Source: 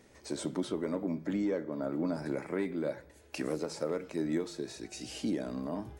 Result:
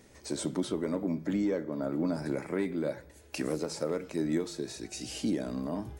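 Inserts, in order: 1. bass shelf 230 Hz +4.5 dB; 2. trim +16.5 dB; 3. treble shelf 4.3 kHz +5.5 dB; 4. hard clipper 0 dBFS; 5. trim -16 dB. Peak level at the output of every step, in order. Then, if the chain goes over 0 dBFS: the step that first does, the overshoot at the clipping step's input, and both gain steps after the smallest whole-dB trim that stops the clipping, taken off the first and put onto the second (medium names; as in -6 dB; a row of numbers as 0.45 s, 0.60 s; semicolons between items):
-19.5 dBFS, -3.0 dBFS, -3.0 dBFS, -3.0 dBFS, -19.0 dBFS; nothing clips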